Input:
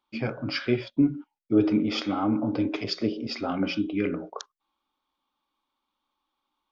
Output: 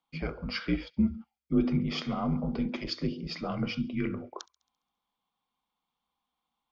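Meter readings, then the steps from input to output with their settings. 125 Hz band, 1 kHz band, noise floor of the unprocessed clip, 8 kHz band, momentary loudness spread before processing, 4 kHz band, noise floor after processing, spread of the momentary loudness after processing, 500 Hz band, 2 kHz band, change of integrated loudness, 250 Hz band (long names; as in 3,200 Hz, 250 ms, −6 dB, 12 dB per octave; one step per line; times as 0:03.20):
0.0 dB, −5.5 dB, −82 dBFS, can't be measured, 11 LU, −4.5 dB, below −85 dBFS, 11 LU, −8.0 dB, −4.5 dB, −4.5 dB, −5.0 dB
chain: frequency shifter −67 Hz
delay with a high-pass on its return 68 ms, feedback 56%, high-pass 2,600 Hz, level −22 dB
level −4.5 dB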